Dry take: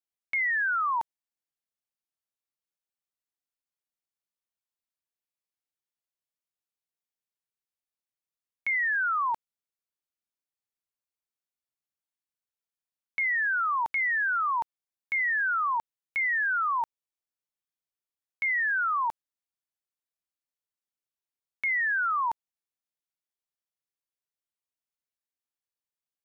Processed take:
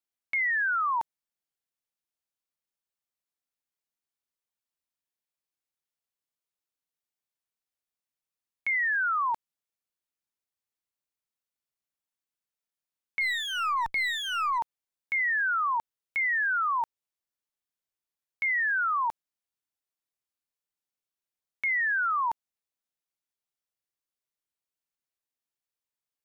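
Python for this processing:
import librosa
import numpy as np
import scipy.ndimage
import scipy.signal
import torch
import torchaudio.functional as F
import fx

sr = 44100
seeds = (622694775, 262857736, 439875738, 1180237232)

y = fx.lower_of_two(x, sr, delay_ms=0.9, at=(13.2, 14.57), fade=0.02)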